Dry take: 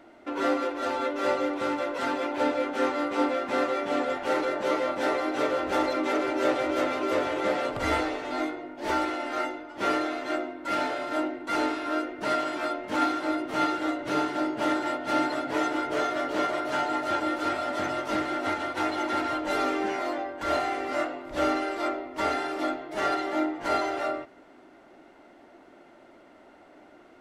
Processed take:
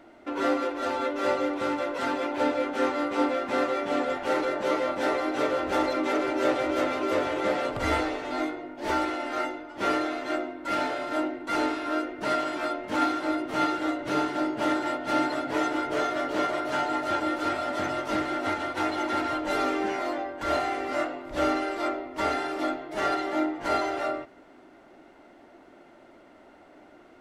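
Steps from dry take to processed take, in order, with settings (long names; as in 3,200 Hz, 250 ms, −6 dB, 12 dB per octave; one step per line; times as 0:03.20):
low-shelf EQ 140 Hz +3.5 dB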